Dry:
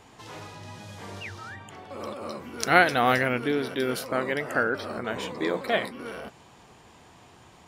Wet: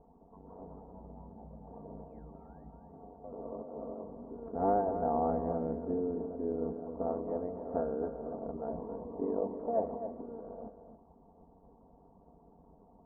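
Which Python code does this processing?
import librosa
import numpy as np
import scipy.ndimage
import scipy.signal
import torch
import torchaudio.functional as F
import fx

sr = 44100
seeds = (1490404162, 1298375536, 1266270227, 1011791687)

p1 = scipy.signal.sosfilt(scipy.signal.butter(6, 850.0, 'lowpass', fs=sr, output='sos'), x)
p2 = fx.stretch_grains(p1, sr, factor=1.7, grain_ms=21.0)
p3 = fx.hpss(p2, sr, part='percussive', gain_db=9)
p4 = p3 + fx.echo_single(p3, sr, ms=269, db=-9.5, dry=0)
y = p4 * librosa.db_to_amplitude(-8.0)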